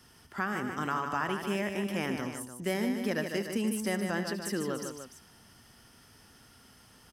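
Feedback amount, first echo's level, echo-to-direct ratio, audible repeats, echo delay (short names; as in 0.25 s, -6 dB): no steady repeat, -14.0 dB, -4.5 dB, 3, 75 ms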